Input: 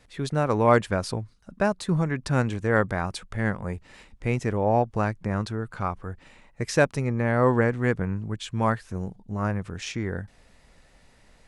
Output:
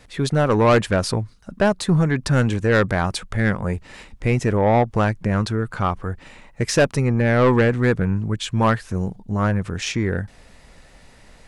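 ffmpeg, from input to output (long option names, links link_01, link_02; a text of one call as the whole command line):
ffmpeg -i in.wav -af "asoftclip=type=tanh:threshold=-18dB,volume=8.5dB" out.wav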